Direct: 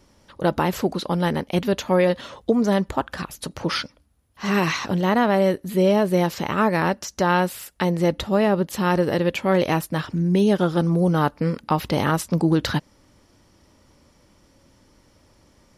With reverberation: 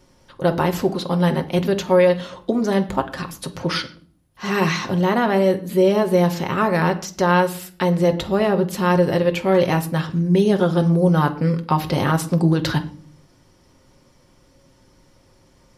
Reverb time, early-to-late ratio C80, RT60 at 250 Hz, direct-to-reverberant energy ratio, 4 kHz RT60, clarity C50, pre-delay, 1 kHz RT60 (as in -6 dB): 0.45 s, 19.0 dB, 0.75 s, 5.0 dB, 0.35 s, 15.5 dB, 6 ms, 0.40 s